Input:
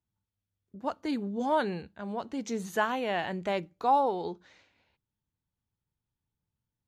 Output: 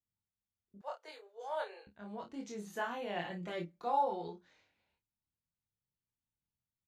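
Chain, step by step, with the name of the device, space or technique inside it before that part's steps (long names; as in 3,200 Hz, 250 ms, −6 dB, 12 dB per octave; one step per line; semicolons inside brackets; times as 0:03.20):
double-tracked vocal (double-tracking delay 29 ms −7 dB; chorus effect 0.87 Hz, depth 3.2 ms)
0:00.81–0:01.87: Butterworth high-pass 440 Hz 48 dB per octave
0:03.15–0:04.28: comb filter 5.7 ms, depth 68%
level −7.5 dB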